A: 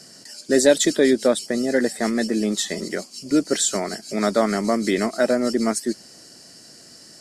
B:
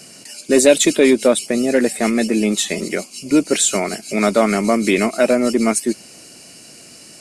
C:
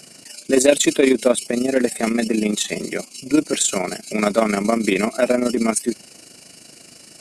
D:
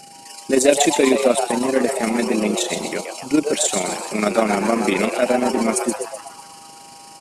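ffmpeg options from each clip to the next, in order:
ffmpeg -i in.wav -af "acontrast=28,superequalizer=11b=0.708:12b=2.82:14b=0.631:16b=1.58" out.wav
ffmpeg -i in.wav -af "tremolo=f=26:d=0.621" out.wav
ffmpeg -i in.wav -filter_complex "[0:a]aeval=exprs='val(0)+0.00794*sin(2*PI*800*n/s)':channel_layout=same,asplit=2[link_01][link_02];[link_02]asplit=7[link_03][link_04][link_05][link_06][link_07][link_08][link_09];[link_03]adelay=126,afreqshift=150,volume=-6.5dB[link_10];[link_04]adelay=252,afreqshift=300,volume=-11.9dB[link_11];[link_05]adelay=378,afreqshift=450,volume=-17.2dB[link_12];[link_06]adelay=504,afreqshift=600,volume=-22.6dB[link_13];[link_07]adelay=630,afreqshift=750,volume=-27.9dB[link_14];[link_08]adelay=756,afreqshift=900,volume=-33.3dB[link_15];[link_09]adelay=882,afreqshift=1050,volume=-38.6dB[link_16];[link_10][link_11][link_12][link_13][link_14][link_15][link_16]amix=inputs=7:normalize=0[link_17];[link_01][link_17]amix=inputs=2:normalize=0,volume=-1dB" out.wav

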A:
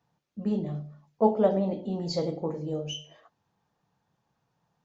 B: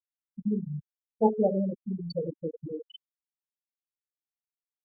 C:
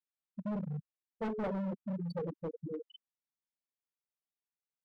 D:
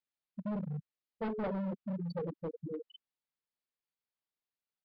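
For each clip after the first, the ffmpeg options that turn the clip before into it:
ffmpeg -i in.wav -af "afftfilt=real='re*gte(hypot(re,im),0.2)':imag='im*gte(hypot(re,im),0.2)':win_size=1024:overlap=0.75,anlmdn=0.0398,equalizer=frequency=660:width_type=o:width=0.37:gain=-5" out.wav
ffmpeg -i in.wav -filter_complex "[0:a]equalizer=frequency=190:width=1.5:gain=6,volume=27.5dB,asoftclip=hard,volume=-27.5dB,asplit=2[link_01][link_02];[link_02]highpass=frequency=720:poles=1,volume=3dB,asoftclip=type=tanh:threshold=-27.5dB[link_03];[link_01][link_03]amix=inputs=2:normalize=0,lowpass=frequency=1400:poles=1,volume=-6dB,volume=-1.5dB" out.wav
ffmpeg -i in.wav -af "aresample=11025,aresample=44100" out.wav

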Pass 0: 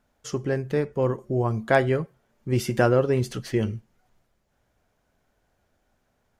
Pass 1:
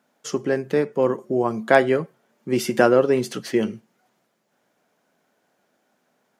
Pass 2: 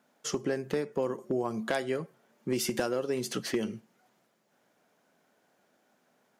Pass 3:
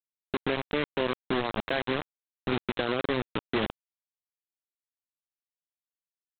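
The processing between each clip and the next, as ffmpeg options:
ffmpeg -i in.wav -af "highpass=frequency=180:width=0.5412,highpass=frequency=180:width=1.3066,volume=4.5dB" out.wav
ffmpeg -i in.wav -filter_complex "[0:a]acrossover=split=3900[link_01][link_02];[link_01]acompressor=threshold=-25dB:ratio=8[link_03];[link_03][link_02]amix=inputs=2:normalize=0,asoftclip=type=hard:threshold=-19dB,volume=-1.5dB" out.wav
ffmpeg -i in.wav -af "alimiter=limit=-24dB:level=0:latency=1:release=33,aresample=8000,acrusher=bits=4:mix=0:aa=0.000001,aresample=44100,volume=3dB" out.wav

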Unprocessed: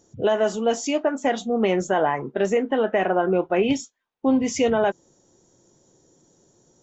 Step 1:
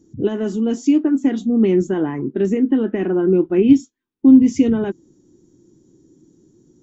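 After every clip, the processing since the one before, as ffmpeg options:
ffmpeg -i in.wav -af "lowshelf=frequency=440:width_type=q:width=3:gain=11.5,volume=-6dB" out.wav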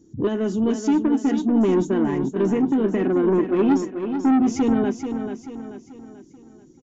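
ffmpeg -i in.wav -filter_complex "[0:a]asoftclip=type=tanh:threshold=-14.5dB,asplit=2[link_01][link_02];[link_02]aecho=0:1:436|872|1308|1744|2180:0.398|0.171|0.0736|0.0317|0.0136[link_03];[link_01][link_03]amix=inputs=2:normalize=0,aresample=16000,aresample=44100" out.wav

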